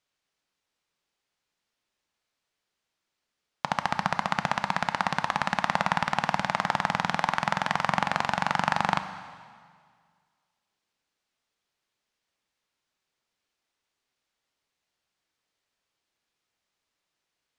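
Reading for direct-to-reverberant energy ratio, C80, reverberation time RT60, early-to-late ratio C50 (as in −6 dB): 9.5 dB, 12.0 dB, 1.9 s, 11.0 dB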